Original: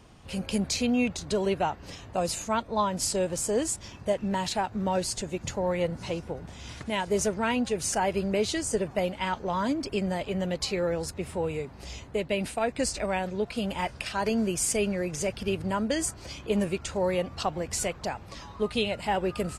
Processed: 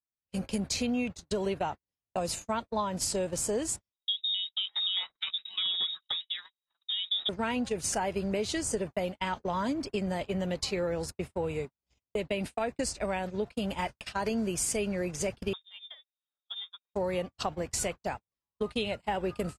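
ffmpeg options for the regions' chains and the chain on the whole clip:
-filter_complex "[0:a]asettb=1/sr,asplit=3[s0][s1][s2];[s0]atrim=end=3.924[s3];[s1]atrim=start=3.92:end=7.29,asetpts=PTS-STARTPTS,afade=t=in:d=0.004:c=qsin,afade=t=out:st=3.366:d=0.004:c=qsin,acrossover=split=1100[s4][s5];[s5]adelay=630[s6];[s4][s6]amix=inputs=2:normalize=0,atrim=end_sample=148617,lowpass=f=3300:t=q:w=0.5098,lowpass=f=3300:t=q:w=0.6013,lowpass=f=3300:t=q:w=0.9,lowpass=f=3300:t=q:w=2.563,afreqshift=-3900[s7];[s2]atrim=start=7.286[s8];[s3][s7]acrossfade=d=0.004:c1=hsin:c2=qsin[s9];[s9][s8]acrossfade=d=0.004:c1=qsin:c2=hsin,asettb=1/sr,asplit=3[s10][s11][s12];[s10]atrim=end=15.534[s13];[s11]atrim=start=15.53:end=16.94,asetpts=PTS-STARTPTS,afade=t=in:d=0.004:c=qsin,afade=t=out:st=1.406:d=0.004:c=qsin,adynamicequalizer=threshold=0.0141:dfrequency=690:dqfactor=0.94:tfrequency=690:tqfactor=0.94:attack=5:release=100:ratio=0.375:range=2:mode=cutabove:tftype=bell,acompressor=threshold=0.01:ratio=2:attack=3.2:release=140:knee=1:detection=peak,lowpass=f=3200:t=q:w=0.5098,lowpass=f=3200:t=q:w=0.6013,lowpass=f=3200:t=q:w=0.9,lowpass=f=3200:t=q:w=2.563,afreqshift=-3800[s14];[s12]atrim=start=16.936[s15];[s13][s14]acrossfade=d=0.004:c1=hsin:c2=qsin[s16];[s16][s15]acrossfade=d=0.004:c1=qsin:c2=hsin,acompressor=threshold=0.0447:ratio=6,agate=range=0.00178:threshold=0.02:ratio=16:detection=peak"

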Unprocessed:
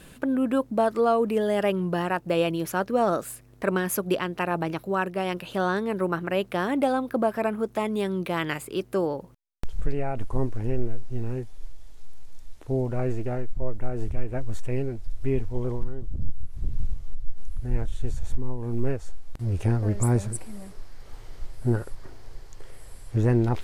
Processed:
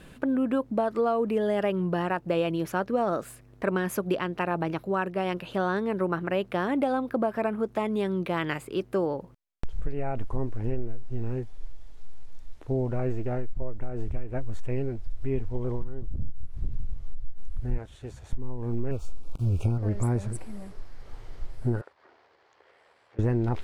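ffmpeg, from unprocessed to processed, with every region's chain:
-filter_complex "[0:a]asettb=1/sr,asplit=3[s0][s1][s2];[s0]atrim=end=17.784[s3];[s1]atrim=start=17.78:end=18.33,asetpts=PTS-STARTPTS,afade=t=in:d=0.004:c=qsin,afade=t=out:st=0.546:d=0.004:c=qsin,highpass=110,equalizer=f=170:t=o:w=2:g=-6.5[s4];[s2]atrim=start=18.326[s5];[s3][s4]acrossfade=d=0.004:c1=hsin:c2=qsin[s6];[s6][s5]acrossfade=d=0.004:c1=qsin:c2=hsin,asettb=1/sr,asplit=3[s7][s8][s9];[s7]atrim=end=18.914[s10];[s8]atrim=start=18.91:end=19.78,asetpts=PTS-STARTPTS,afade=t=in:d=0.004:c=qsin,afade=t=out:st=0.866:d=0.004:c=qsin,bass=f=250:g=4,treble=f=4000:g=5,acrusher=bits=7:mix=0:aa=0.5,asuperstop=centerf=1800:order=12:qfactor=2.3[s11];[s9]atrim=start=19.776[s12];[s10][s11]acrossfade=d=0.004:c1=hsin:c2=qsin[s13];[s13][s12]acrossfade=d=0.004:c1=qsin:c2=hsin,asettb=1/sr,asplit=3[s14][s15][s16];[s14]atrim=end=21.814[s17];[s15]atrim=start=21.81:end=23.19,asetpts=PTS-STARTPTS,afade=t=in:d=0.004:c=qsin,afade=t=out:st=1.376:d=0.004:c=qsin,acompressor=threshold=0.02:ratio=2:attack=3.2:release=140:knee=1:detection=peak,tremolo=f=78:d=0.4,highpass=570,lowpass=3500[s18];[s16]atrim=start=23.186[s19];[s17][s18]acrossfade=d=0.004:c1=hsin:c2=qsin[s20];[s20][s19]acrossfade=d=0.004:c1=qsin:c2=hsin,highshelf=f=5300:g=-11,acompressor=threshold=0.0891:ratio=6"

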